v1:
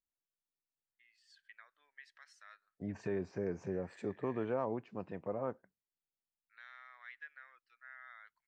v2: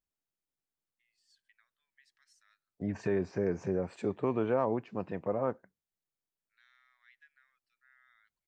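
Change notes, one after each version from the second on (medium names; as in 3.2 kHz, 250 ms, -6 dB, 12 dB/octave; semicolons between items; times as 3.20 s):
first voice: add differentiator; second voice +6.5 dB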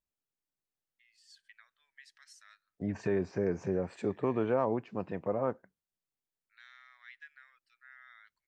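first voice +10.5 dB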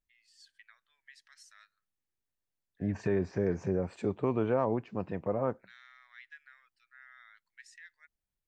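first voice: entry -0.90 s; master: add bass shelf 97 Hz +9.5 dB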